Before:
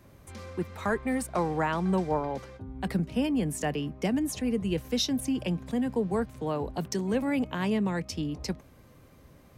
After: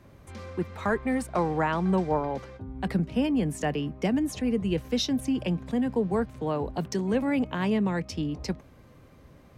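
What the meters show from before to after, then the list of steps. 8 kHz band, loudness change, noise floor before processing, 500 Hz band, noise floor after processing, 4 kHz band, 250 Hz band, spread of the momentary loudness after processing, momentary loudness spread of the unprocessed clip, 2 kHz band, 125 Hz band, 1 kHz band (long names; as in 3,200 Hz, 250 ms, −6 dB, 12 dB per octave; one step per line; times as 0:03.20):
−3.0 dB, +2.0 dB, −55 dBFS, +2.0 dB, −54 dBFS, −0.5 dB, +2.0 dB, 9 LU, 9 LU, +1.5 dB, +2.0 dB, +2.0 dB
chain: high-shelf EQ 6,900 Hz −10 dB
level +2 dB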